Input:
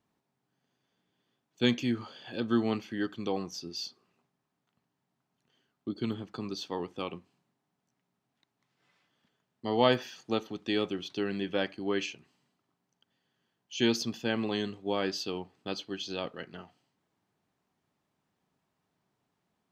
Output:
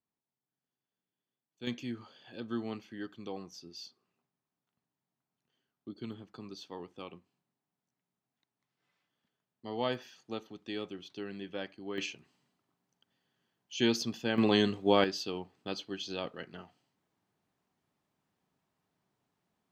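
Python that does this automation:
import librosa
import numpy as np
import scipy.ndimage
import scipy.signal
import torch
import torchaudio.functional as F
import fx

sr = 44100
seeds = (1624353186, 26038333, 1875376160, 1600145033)

y = fx.gain(x, sr, db=fx.steps((0.0, -16.0), (1.67, -9.0), (11.98, -1.5), (14.38, 6.0), (15.04, -2.0)))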